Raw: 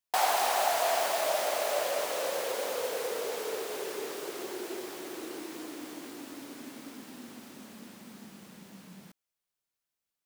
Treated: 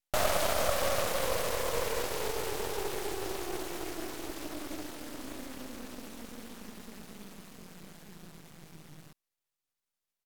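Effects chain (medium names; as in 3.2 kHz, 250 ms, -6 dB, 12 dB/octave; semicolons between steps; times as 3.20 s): pitch shift -3.5 st; half-wave rectifier; trim +2.5 dB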